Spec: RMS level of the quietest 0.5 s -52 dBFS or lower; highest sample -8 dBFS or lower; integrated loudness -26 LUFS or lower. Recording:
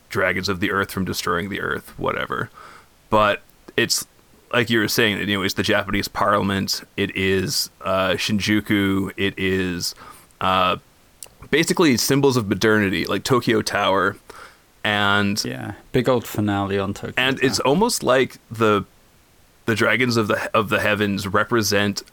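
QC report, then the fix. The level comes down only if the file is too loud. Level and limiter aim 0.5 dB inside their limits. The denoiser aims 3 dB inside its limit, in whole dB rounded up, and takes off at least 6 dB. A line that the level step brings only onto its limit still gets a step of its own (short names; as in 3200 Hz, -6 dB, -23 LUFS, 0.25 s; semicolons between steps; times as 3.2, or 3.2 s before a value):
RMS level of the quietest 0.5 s -54 dBFS: OK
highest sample -5.0 dBFS: fail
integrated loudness -20.5 LUFS: fail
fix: gain -6 dB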